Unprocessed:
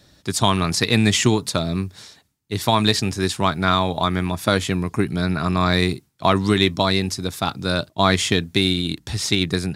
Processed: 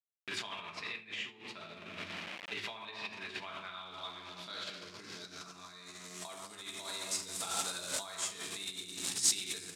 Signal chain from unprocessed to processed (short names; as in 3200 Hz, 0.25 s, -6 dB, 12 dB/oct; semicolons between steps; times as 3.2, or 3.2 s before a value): high shelf 2000 Hz -11.5 dB; echo 0.118 s -15 dB; reverb RT60 1.7 s, pre-delay 4 ms, DRR -4 dB; sample gate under -28.5 dBFS; negative-ratio compressor -23 dBFS, ratio -1; low-pass sweep 2600 Hz -> 8200 Hz, 3.42–6.35; differentiator; gain -2 dB